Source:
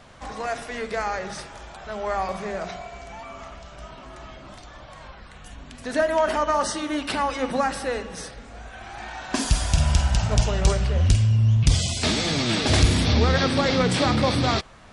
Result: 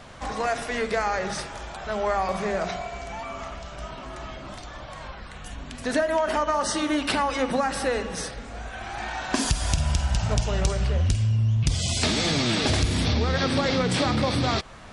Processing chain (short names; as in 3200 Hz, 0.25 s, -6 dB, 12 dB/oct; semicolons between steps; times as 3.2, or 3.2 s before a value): compressor, threshold -24 dBFS, peak gain reduction 11.5 dB; gain +4 dB